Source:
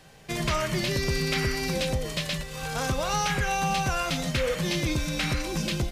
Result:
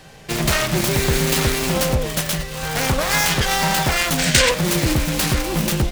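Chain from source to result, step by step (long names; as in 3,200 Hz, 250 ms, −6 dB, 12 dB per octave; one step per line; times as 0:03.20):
phase distortion by the signal itself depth 0.42 ms
gain on a spectral selection 0:04.19–0:04.50, 1,400–9,200 Hz +9 dB
level +9 dB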